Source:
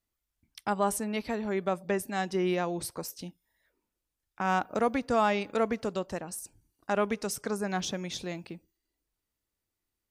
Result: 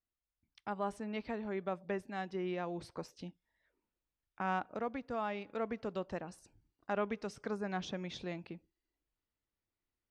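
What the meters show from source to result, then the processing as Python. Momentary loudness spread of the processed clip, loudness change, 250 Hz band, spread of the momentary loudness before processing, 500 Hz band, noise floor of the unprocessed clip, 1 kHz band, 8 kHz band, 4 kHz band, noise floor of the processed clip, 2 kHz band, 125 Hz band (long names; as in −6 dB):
12 LU, −9.0 dB, −8.5 dB, 13 LU, −8.5 dB, below −85 dBFS, −9.0 dB, −20.5 dB, −10.5 dB, below −85 dBFS, −8.5 dB, −7.5 dB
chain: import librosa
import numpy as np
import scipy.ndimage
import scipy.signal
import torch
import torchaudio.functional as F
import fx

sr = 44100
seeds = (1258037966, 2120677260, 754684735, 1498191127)

y = scipy.signal.sosfilt(scipy.signal.butter(2, 3500.0, 'lowpass', fs=sr, output='sos'), x)
y = fx.rider(y, sr, range_db=4, speed_s=0.5)
y = y * 10.0 ** (-8.5 / 20.0)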